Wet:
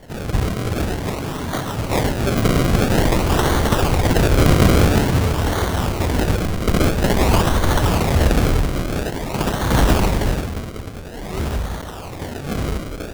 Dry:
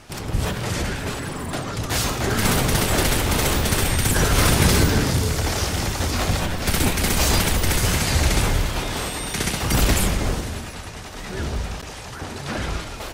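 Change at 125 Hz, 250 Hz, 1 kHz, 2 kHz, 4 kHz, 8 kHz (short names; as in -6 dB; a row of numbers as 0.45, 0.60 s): +4.0, +5.0, +4.0, -0.5, -2.5, -6.0 dB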